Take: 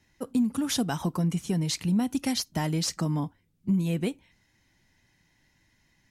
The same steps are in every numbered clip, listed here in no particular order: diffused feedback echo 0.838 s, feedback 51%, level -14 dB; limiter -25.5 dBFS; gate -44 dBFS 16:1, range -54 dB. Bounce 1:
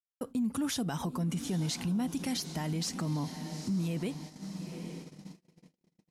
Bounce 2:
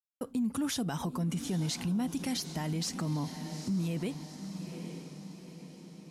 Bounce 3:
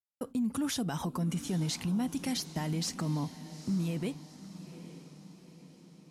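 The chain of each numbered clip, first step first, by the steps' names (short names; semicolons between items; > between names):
diffused feedback echo > limiter > gate; gate > diffused feedback echo > limiter; limiter > gate > diffused feedback echo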